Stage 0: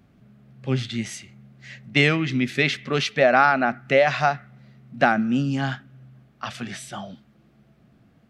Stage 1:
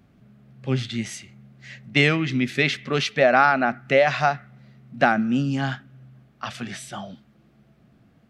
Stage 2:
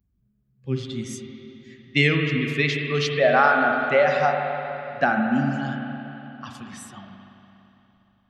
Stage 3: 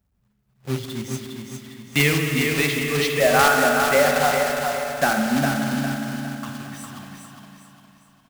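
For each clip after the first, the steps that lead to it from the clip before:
no audible change
expander on every frequency bin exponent 1.5; spring tank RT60 3.3 s, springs 41/57 ms, chirp 60 ms, DRR 2 dB
block-companded coder 3-bit; feedback delay 406 ms, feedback 41%, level -5.5 dB

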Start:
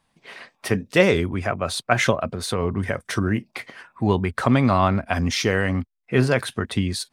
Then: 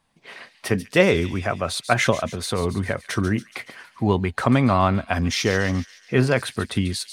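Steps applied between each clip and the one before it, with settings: feedback echo behind a high-pass 141 ms, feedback 57%, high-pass 3.4 kHz, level -9 dB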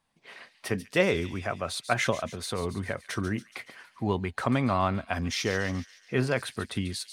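bass shelf 330 Hz -2.5 dB; trim -6.5 dB

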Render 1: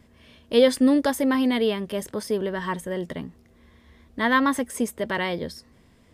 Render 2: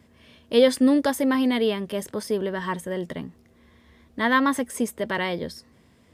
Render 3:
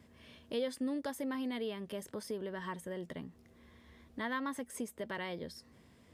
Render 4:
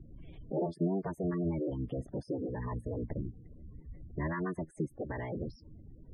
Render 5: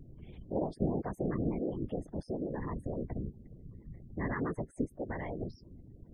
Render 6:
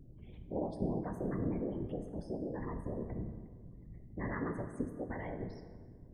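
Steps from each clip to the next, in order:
high-pass 71 Hz
compression 2:1, threshold -40 dBFS, peak gain reduction 15 dB; trim -4.5 dB
cycle switcher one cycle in 3, inverted; spectral gate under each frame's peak -10 dB strong; RIAA curve playback
whisper effect
plate-style reverb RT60 1.7 s, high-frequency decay 0.55×, DRR 5.5 dB; trim -4 dB

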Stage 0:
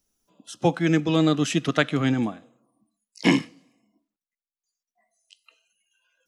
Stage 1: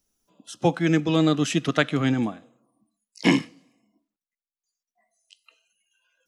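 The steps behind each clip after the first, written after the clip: no audible change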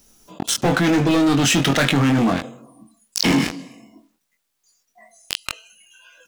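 waveshaping leveller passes 5; doubling 22 ms -5 dB; level flattener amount 70%; trim -10.5 dB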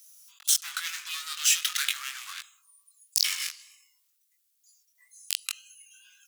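wow and flutter 29 cents; Chebyshev high-pass 1.2 kHz, order 4; differentiator; trim +1 dB

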